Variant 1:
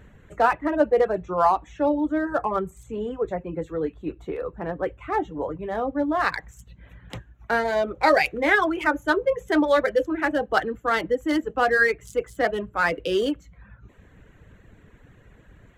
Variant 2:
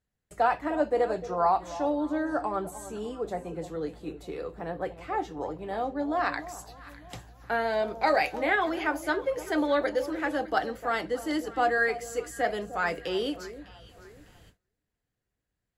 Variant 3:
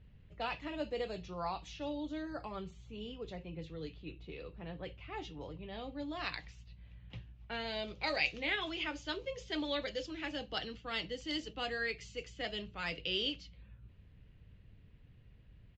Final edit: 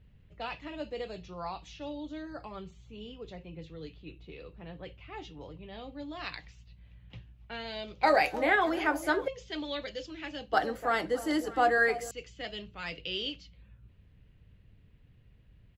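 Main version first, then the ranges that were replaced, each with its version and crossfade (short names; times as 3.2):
3
8.03–9.28 from 2
10.53–12.11 from 2
not used: 1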